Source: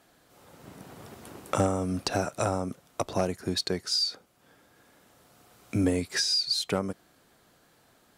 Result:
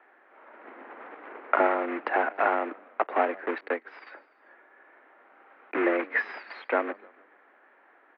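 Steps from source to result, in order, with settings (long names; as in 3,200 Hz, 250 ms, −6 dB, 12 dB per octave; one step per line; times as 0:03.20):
one scale factor per block 3 bits
spectral tilt +3.5 dB per octave
on a send: echo with shifted repeats 147 ms, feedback 49%, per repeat −52 Hz, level −23 dB
on the sum: single-sideband voice off tune +72 Hz 190–2,000 Hz
0:03.58–0:04.07: expander for the loud parts 1.5 to 1, over −48 dBFS
level +6 dB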